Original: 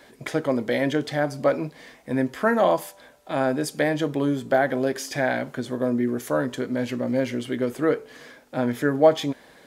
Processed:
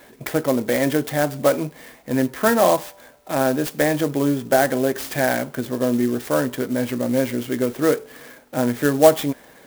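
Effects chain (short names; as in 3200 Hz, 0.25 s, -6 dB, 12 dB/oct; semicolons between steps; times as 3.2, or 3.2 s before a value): clock jitter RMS 0.048 ms; gain +3.5 dB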